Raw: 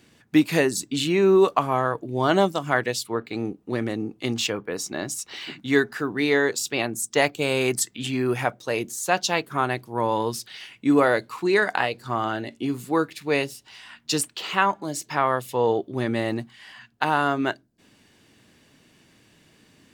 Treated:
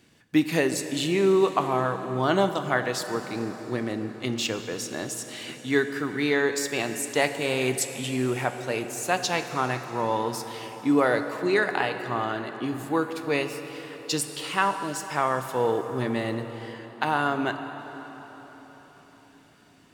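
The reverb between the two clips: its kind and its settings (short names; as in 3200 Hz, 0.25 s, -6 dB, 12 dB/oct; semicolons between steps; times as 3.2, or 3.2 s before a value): plate-style reverb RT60 4.7 s, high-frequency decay 0.7×, DRR 7.5 dB; gain -3 dB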